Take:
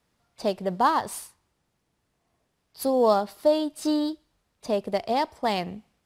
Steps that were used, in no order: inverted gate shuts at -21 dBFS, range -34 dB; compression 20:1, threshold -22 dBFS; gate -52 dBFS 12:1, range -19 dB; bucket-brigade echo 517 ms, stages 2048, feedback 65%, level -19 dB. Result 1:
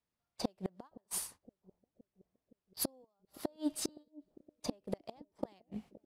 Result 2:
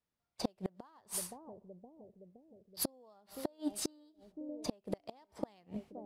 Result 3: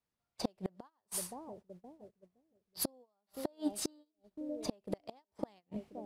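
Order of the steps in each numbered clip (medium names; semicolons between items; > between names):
compression > inverted gate > gate > bucket-brigade echo; gate > compression > bucket-brigade echo > inverted gate; bucket-brigade echo > compression > inverted gate > gate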